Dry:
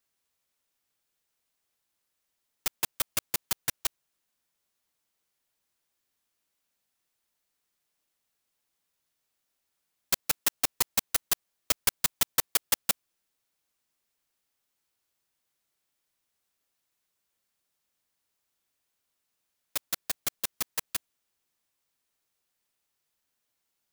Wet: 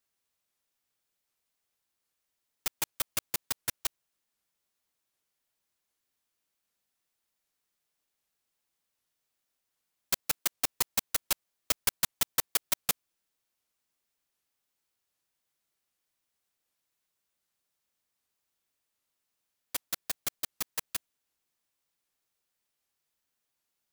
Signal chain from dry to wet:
wow of a warped record 78 rpm, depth 250 cents
level −2.5 dB

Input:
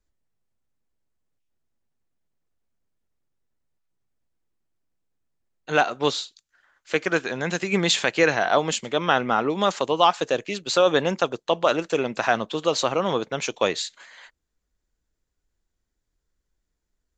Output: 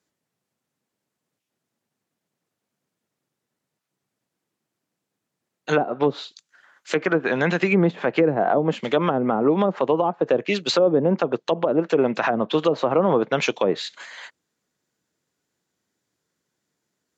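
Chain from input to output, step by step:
treble cut that deepens with the level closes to 420 Hz, closed at −16 dBFS
high-pass filter 130 Hz 24 dB per octave
brickwall limiter −16.5 dBFS, peak gain reduction 9.5 dB
level +7.5 dB

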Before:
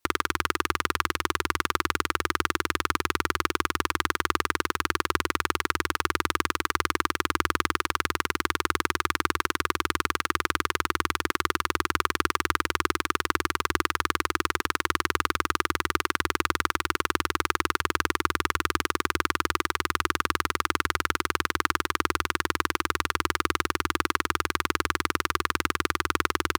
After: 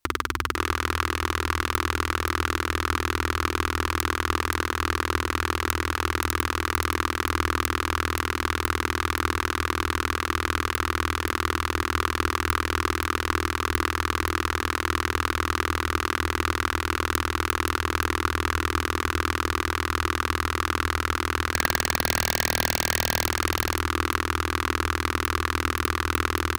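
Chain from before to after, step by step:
gain on a spectral selection 0:21.54–0:23.25, 1,600–4,300 Hz +8 dB
low-shelf EQ 82 Hz +12 dB
mains-hum notches 60/120/180/240 Hz
wrap-around overflow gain 3 dB
on a send: single-tap delay 526 ms −6 dB

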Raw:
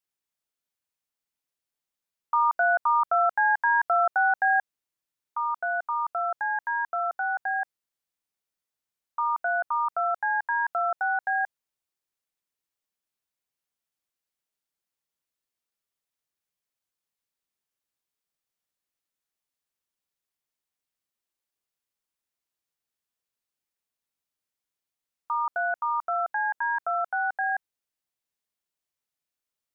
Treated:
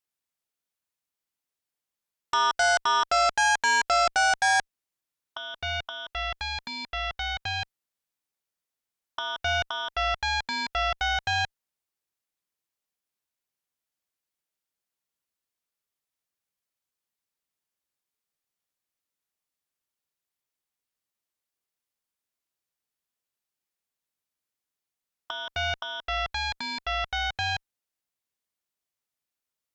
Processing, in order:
dynamic equaliser 1,000 Hz, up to −6 dB, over −40 dBFS, Q 5
harmonic generator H 2 −27 dB, 7 −11 dB, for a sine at −15 dBFS

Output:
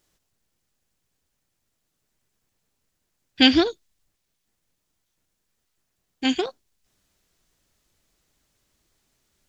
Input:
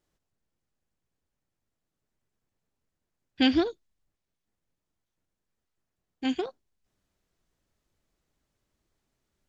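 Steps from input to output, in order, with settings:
high-shelf EQ 2,100 Hz +9 dB
level +5 dB

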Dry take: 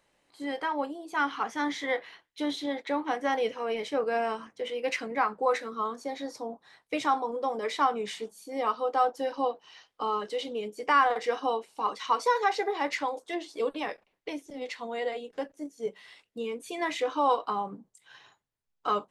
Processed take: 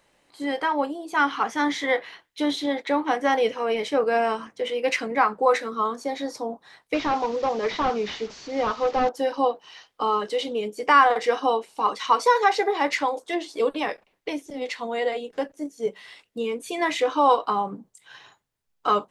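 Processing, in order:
0:06.94–0:09.09: linear delta modulator 32 kbit/s, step −42 dBFS
level +6.5 dB

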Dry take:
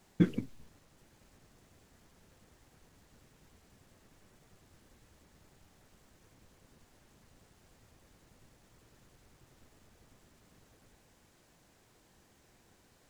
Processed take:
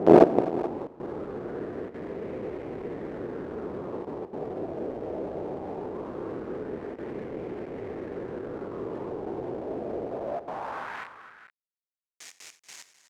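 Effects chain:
peak hold with a rise ahead of every peak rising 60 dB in 0.93 s
noise gate with hold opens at −51 dBFS
in parallel at +3 dB: compressor whose output falls as the input rises −59 dBFS, ratio −1
on the sum: sine wavefolder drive 7 dB, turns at −11.5 dBFS
spectral peaks only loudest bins 32
log-companded quantiser 2 bits
band-pass filter sweep 400 Hz → 6,600 Hz, 0:10.03–0:11.88
on a send: multi-tap delay 57/90/257/432 ms −19.5/−18.5/−15/−15.5 dB
on the sum: auto-filter bell 0.2 Hz 660–2,200 Hz +8 dB
level +1 dB

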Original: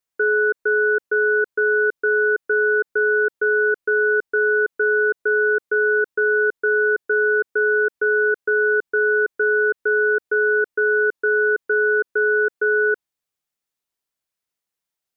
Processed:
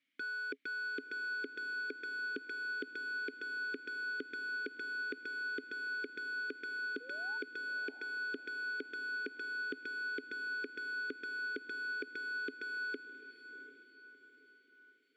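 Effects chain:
parametric band 420 Hz −12 dB 0.35 octaves
notch filter 420 Hz, Q 12
mid-hump overdrive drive 31 dB, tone 1,200 Hz, clips at −11 dBFS
in parallel at −9.5 dB: gain into a clipping stage and back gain 28.5 dB
on the sum: formant filter i
sound drawn into the spectrogram rise, 0:07.00–0:07.38, 460–940 Hz −56 dBFS
on a send: feedback delay with all-pass diffusion 693 ms, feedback 42%, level −12 dB
on the sum: level +1.5 dB

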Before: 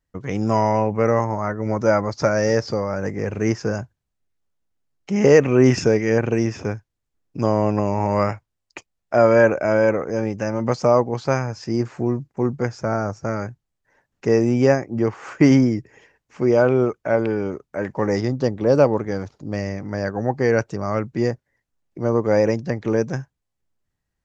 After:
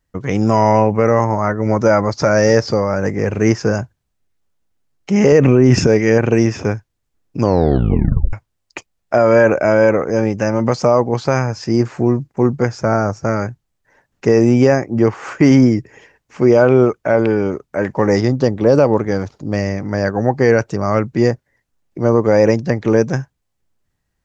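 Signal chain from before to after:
0:05.32–0:05.87: low-shelf EQ 470 Hz +8 dB
brickwall limiter −8.5 dBFS, peak gain reduction 10.5 dB
0:07.41: tape stop 0.92 s
level +7 dB

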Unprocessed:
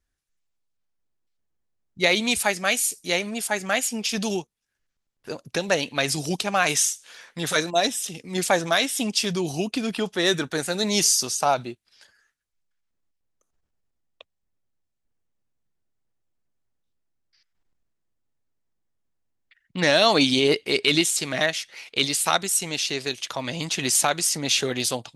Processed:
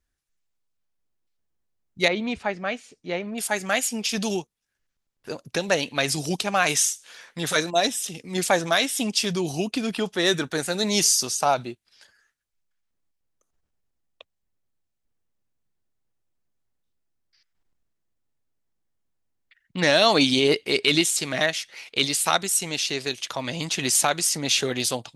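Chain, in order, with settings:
0:02.08–0:03.38: head-to-tape spacing loss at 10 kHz 36 dB

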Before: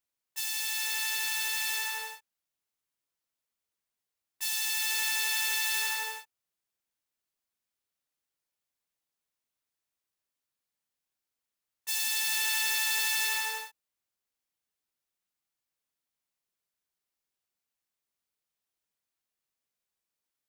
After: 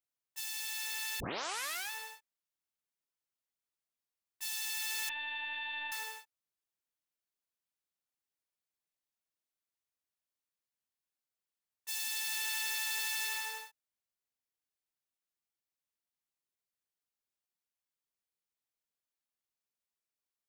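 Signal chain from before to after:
0:01.20: tape start 0.71 s
0:05.09–0:05.92: linear-prediction vocoder at 8 kHz pitch kept
level −7 dB

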